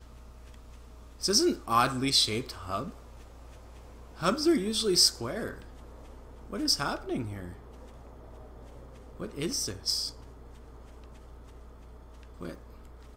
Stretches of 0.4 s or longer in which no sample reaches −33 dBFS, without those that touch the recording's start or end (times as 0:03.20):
0:02.89–0:04.22
0:05.53–0:06.53
0:07.48–0:09.20
0:10.09–0:12.41